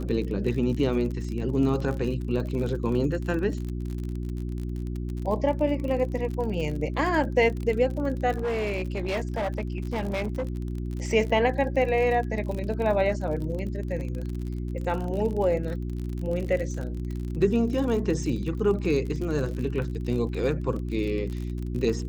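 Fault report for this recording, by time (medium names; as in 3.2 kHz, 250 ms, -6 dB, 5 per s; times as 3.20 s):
crackle 44 per s -32 dBFS
hum 60 Hz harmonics 6 -31 dBFS
8.37–10.55 s: clipped -24 dBFS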